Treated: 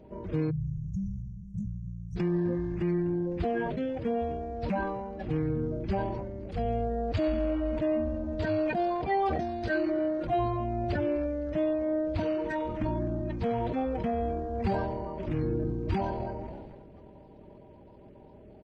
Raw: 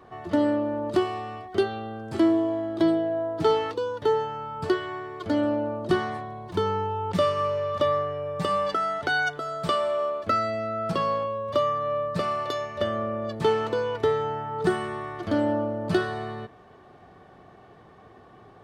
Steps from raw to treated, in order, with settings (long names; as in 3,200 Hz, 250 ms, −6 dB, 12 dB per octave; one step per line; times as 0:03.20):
spectral magnitudes quantised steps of 30 dB
echo with shifted repeats 255 ms, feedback 59%, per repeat −130 Hz, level −23 dB
brickwall limiter −19 dBFS, peak gain reduction 8 dB
pitch shifter −11 semitones
time-frequency box erased 0:00.50–0:02.16, 200–5,500 Hz
dynamic equaliser 220 Hz, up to −4 dB, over −41 dBFS, Q 1.3
level that may fall only so fast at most 31 dB per second